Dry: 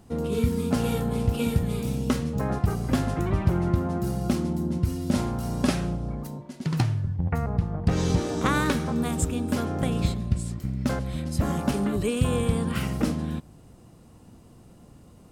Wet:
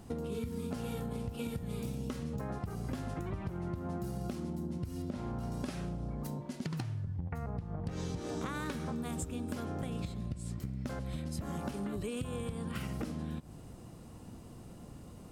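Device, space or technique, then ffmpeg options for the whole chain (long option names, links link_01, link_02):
serial compression, peaks first: -filter_complex "[0:a]acompressor=threshold=-31dB:ratio=6,acompressor=threshold=-37dB:ratio=2.5,asettb=1/sr,asplit=3[link_01][link_02][link_03];[link_01]atrim=end=5.024[link_04];[link_02]atrim=start=5.02:end=5.52,asetpts=PTS-STARTPTS,afade=type=in:duration=0.004:curve=qsin,afade=type=out:start_time=0.496:duration=0.004:curve=qsin,lowpass=frequency=2700:poles=1[link_05];[link_03]atrim=start=5.516[link_06];[link_04][link_05]acrossfade=duration=0.004:curve1=hsin:curve2=qsin[link_07];[link_07][link_06]acrossfade=duration=0.004:curve1=qsin:curve2=hsin,volume=1dB"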